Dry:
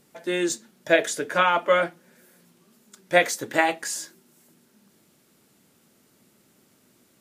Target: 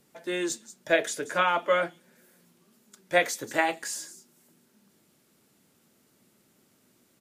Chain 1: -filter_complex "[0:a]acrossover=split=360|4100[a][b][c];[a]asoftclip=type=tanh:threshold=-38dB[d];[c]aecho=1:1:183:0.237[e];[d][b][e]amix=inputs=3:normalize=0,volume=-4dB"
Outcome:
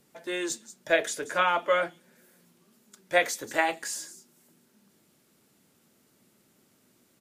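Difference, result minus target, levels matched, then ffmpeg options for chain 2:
soft clip: distortion +10 dB
-filter_complex "[0:a]acrossover=split=360|4100[a][b][c];[a]asoftclip=type=tanh:threshold=-27dB[d];[c]aecho=1:1:183:0.237[e];[d][b][e]amix=inputs=3:normalize=0,volume=-4dB"

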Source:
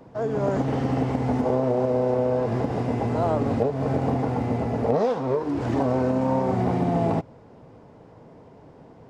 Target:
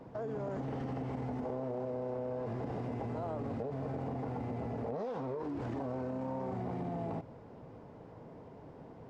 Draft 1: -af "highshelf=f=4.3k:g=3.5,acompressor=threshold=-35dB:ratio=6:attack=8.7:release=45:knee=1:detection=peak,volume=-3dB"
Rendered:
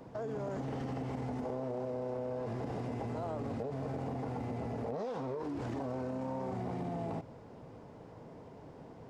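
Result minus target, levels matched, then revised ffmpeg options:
8000 Hz band +7.5 dB
-af "highshelf=f=4.3k:g=-7,acompressor=threshold=-35dB:ratio=6:attack=8.7:release=45:knee=1:detection=peak,volume=-3dB"

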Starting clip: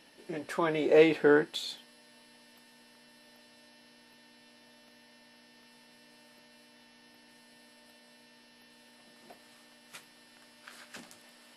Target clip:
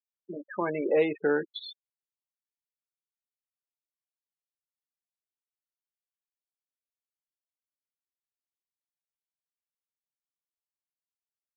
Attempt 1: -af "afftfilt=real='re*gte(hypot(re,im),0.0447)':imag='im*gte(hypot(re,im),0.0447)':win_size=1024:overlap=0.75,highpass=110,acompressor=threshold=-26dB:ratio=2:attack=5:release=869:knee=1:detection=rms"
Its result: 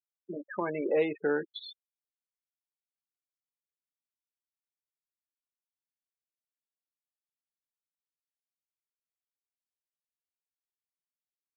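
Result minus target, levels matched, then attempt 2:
compressor: peak gain reduction +3 dB
-af "afftfilt=real='re*gte(hypot(re,im),0.0447)':imag='im*gte(hypot(re,im),0.0447)':win_size=1024:overlap=0.75,highpass=110,acompressor=threshold=-20dB:ratio=2:attack=5:release=869:knee=1:detection=rms"

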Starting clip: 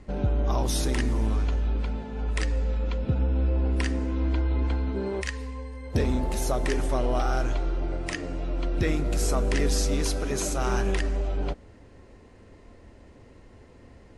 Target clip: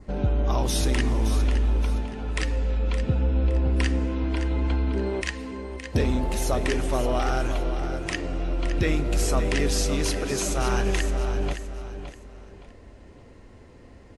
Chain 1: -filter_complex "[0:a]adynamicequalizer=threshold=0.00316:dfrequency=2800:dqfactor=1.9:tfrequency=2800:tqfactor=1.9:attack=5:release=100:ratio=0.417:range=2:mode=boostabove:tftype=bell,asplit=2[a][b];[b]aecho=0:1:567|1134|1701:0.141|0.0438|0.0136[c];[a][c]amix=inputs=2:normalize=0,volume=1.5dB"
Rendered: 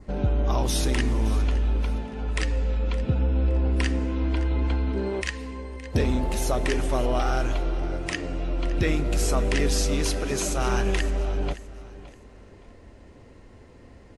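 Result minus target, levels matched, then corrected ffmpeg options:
echo-to-direct -7 dB
-filter_complex "[0:a]adynamicequalizer=threshold=0.00316:dfrequency=2800:dqfactor=1.9:tfrequency=2800:tqfactor=1.9:attack=5:release=100:ratio=0.417:range=2:mode=boostabove:tftype=bell,asplit=2[a][b];[b]aecho=0:1:567|1134|1701:0.316|0.098|0.0304[c];[a][c]amix=inputs=2:normalize=0,volume=1.5dB"

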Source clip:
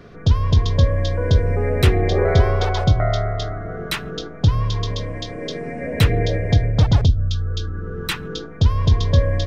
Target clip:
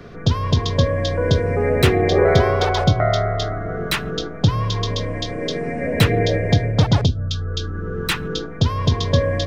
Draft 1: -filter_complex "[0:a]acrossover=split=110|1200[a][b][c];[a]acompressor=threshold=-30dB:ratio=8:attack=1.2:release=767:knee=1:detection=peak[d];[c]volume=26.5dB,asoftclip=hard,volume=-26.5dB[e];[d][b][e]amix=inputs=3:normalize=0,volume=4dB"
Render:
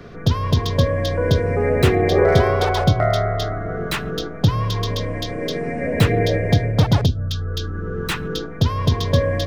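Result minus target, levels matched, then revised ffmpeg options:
overloaded stage: distortion +9 dB
-filter_complex "[0:a]acrossover=split=110|1200[a][b][c];[a]acompressor=threshold=-30dB:ratio=8:attack=1.2:release=767:knee=1:detection=peak[d];[c]volume=19.5dB,asoftclip=hard,volume=-19.5dB[e];[d][b][e]amix=inputs=3:normalize=0,volume=4dB"

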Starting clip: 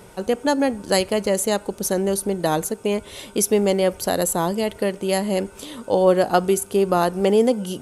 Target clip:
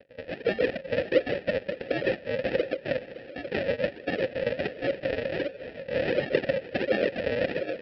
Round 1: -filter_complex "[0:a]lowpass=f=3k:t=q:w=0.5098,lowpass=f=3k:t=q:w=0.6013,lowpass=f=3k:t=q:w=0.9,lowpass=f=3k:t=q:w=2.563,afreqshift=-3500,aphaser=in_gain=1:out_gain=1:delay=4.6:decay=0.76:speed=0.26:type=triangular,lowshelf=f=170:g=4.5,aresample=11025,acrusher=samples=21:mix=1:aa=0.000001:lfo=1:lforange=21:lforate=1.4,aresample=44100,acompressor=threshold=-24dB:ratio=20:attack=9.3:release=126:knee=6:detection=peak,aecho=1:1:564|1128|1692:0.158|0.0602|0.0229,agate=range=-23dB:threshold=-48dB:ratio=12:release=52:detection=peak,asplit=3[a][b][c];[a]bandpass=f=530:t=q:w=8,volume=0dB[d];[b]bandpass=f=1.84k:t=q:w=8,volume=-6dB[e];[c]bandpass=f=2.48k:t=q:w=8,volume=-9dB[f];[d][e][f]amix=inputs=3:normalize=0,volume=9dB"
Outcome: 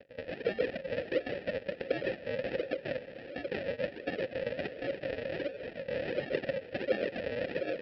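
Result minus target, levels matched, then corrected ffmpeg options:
compressor: peak gain reduction +9 dB
-filter_complex "[0:a]lowpass=f=3k:t=q:w=0.5098,lowpass=f=3k:t=q:w=0.6013,lowpass=f=3k:t=q:w=0.9,lowpass=f=3k:t=q:w=2.563,afreqshift=-3500,aphaser=in_gain=1:out_gain=1:delay=4.6:decay=0.76:speed=0.26:type=triangular,lowshelf=f=170:g=4.5,aresample=11025,acrusher=samples=21:mix=1:aa=0.000001:lfo=1:lforange=21:lforate=1.4,aresample=44100,acompressor=threshold=-14.5dB:ratio=20:attack=9.3:release=126:knee=6:detection=peak,aecho=1:1:564|1128|1692:0.158|0.0602|0.0229,agate=range=-23dB:threshold=-48dB:ratio=12:release=52:detection=peak,asplit=3[a][b][c];[a]bandpass=f=530:t=q:w=8,volume=0dB[d];[b]bandpass=f=1.84k:t=q:w=8,volume=-6dB[e];[c]bandpass=f=2.48k:t=q:w=8,volume=-9dB[f];[d][e][f]amix=inputs=3:normalize=0,volume=9dB"

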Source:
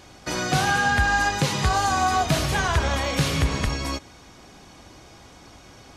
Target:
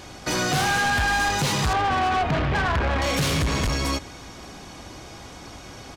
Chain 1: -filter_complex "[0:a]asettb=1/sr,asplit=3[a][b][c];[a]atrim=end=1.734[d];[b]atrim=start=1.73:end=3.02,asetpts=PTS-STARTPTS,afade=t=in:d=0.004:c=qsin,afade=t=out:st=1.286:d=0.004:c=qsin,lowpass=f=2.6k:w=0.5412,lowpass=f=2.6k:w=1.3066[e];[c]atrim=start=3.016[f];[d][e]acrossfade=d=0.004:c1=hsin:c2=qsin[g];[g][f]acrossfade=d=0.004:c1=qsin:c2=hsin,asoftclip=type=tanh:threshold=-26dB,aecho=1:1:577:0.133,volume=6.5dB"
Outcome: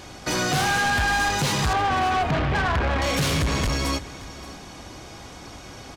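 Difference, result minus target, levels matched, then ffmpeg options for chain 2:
echo-to-direct +8.5 dB
-filter_complex "[0:a]asettb=1/sr,asplit=3[a][b][c];[a]atrim=end=1.734[d];[b]atrim=start=1.73:end=3.02,asetpts=PTS-STARTPTS,afade=t=in:d=0.004:c=qsin,afade=t=out:st=1.286:d=0.004:c=qsin,lowpass=f=2.6k:w=0.5412,lowpass=f=2.6k:w=1.3066[e];[c]atrim=start=3.016[f];[d][e]acrossfade=d=0.004:c1=hsin:c2=qsin[g];[g][f]acrossfade=d=0.004:c1=qsin:c2=hsin,asoftclip=type=tanh:threshold=-26dB,aecho=1:1:577:0.0501,volume=6.5dB"

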